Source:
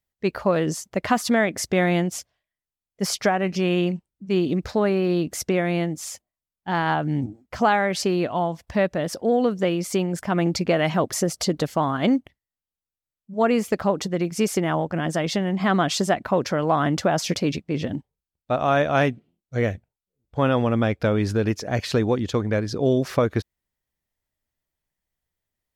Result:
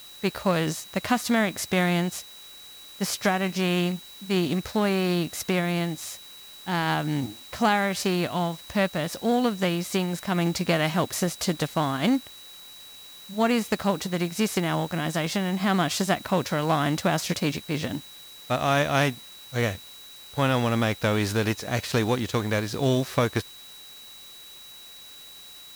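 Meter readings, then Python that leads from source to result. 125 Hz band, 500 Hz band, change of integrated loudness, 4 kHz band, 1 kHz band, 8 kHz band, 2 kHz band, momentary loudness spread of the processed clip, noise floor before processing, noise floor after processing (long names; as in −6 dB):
−1.5 dB, −4.5 dB, −2.5 dB, +1.5 dB, −2.5 dB, −1.5 dB, −0.5 dB, 18 LU, below −85 dBFS, −46 dBFS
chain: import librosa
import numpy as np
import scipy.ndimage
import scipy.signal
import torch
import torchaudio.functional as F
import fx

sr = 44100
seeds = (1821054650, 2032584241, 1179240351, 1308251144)

p1 = fx.envelope_flatten(x, sr, power=0.6)
p2 = p1 + 10.0 ** (-42.0 / 20.0) * np.sin(2.0 * np.pi * 3900.0 * np.arange(len(p1)) / sr)
p3 = fx.quant_dither(p2, sr, seeds[0], bits=6, dither='triangular')
p4 = p2 + (p3 * 10.0 ** (-7.0 / 20.0))
y = p4 * 10.0 ** (-6.0 / 20.0)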